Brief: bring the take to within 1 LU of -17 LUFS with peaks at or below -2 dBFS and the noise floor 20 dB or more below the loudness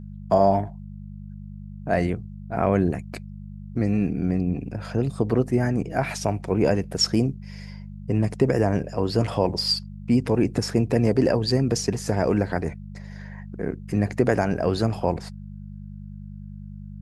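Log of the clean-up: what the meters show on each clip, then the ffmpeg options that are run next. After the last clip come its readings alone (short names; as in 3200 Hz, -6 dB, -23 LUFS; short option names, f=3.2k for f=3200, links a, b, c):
hum 50 Hz; harmonics up to 200 Hz; hum level -35 dBFS; loudness -24.0 LUFS; peak -6.0 dBFS; loudness target -17.0 LUFS
-> -af "bandreject=f=50:t=h:w=4,bandreject=f=100:t=h:w=4,bandreject=f=150:t=h:w=4,bandreject=f=200:t=h:w=4"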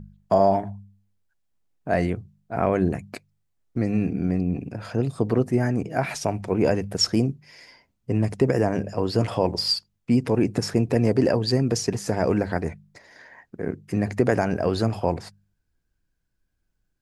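hum none; loudness -24.0 LUFS; peak -5.5 dBFS; loudness target -17.0 LUFS
-> -af "volume=7dB,alimiter=limit=-2dB:level=0:latency=1"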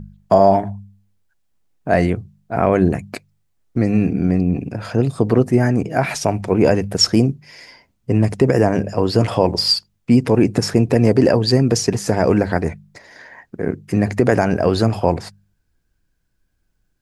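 loudness -17.5 LUFS; peak -2.0 dBFS; noise floor -67 dBFS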